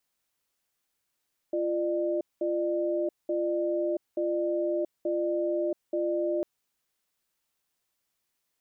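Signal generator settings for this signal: cadence 345 Hz, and 601 Hz, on 0.68 s, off 0.20 s, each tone -28 dBFS 4.90 s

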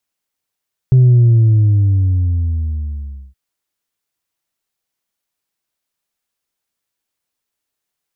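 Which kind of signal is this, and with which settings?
sub drop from 130 Hz, over 2.42 s, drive 1.5 dB, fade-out 2.40 s, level -5.5 dB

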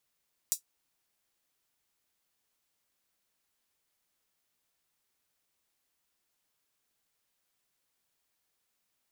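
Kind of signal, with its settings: closed hi-hat, high-pass 6400 Hz, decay 0.11 s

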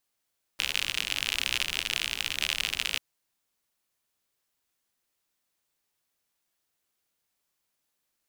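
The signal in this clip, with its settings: rain from filtered ticks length 2.39 s, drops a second 64, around 2800 Hz, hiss -15 dB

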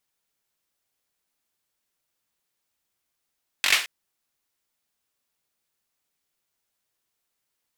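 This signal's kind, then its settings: hand clap length 0.22 s, bursts 5, apart 21 ms, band 2400 Hz, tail 0.38 s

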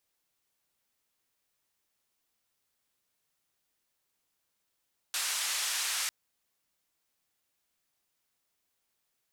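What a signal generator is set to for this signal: noise band 1200–9300 Hz, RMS -32.5 dBFS 0.95 s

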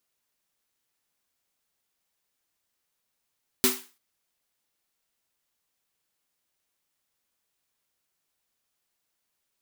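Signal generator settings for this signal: snare drum length 0.34 s, tones 250 Hz, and 380 Hz, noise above 800 Hz, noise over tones 3 dB, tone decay 0.27 s, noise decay 0.36 s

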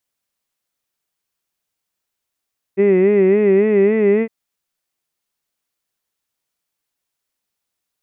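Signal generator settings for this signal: formant-synthesis vowel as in hid, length 1.51 s, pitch 191 Hz, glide +2 st, vibrato 3.6 Hz, vibrato depth 1.05 st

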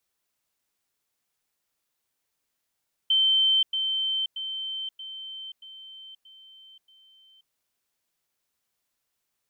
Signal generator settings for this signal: level ladder 3100 Hz -18 dBFS, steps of -6 dB, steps 7, 0.53 s 0.10 s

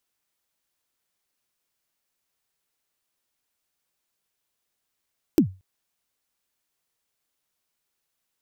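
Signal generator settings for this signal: kick drum length 0.23 s, from 360 Hz, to 94 Hz, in 94 ms, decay 0.28 s, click on, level -9 dB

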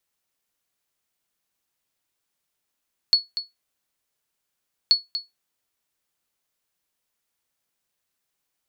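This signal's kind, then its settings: sonar ping 4390 Hz, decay 0.18 s, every 1.78 s, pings 2, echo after 0.24 s, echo -11.5 dB -8 dBFS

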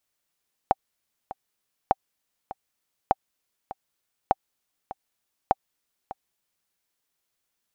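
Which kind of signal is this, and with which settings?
metronome 100 bpm, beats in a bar 2, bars 5, 774 Hz, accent 16.5 dB -5 dBFS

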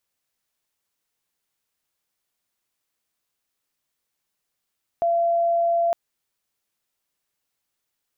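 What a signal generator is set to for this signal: tone sine 681 Hz -17.5 dBFS 0.91 s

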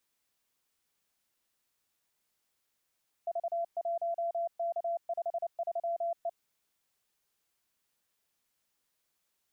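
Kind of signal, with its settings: Morse "V1K53E" 29 wpm 680 Hz -29.5 dBFS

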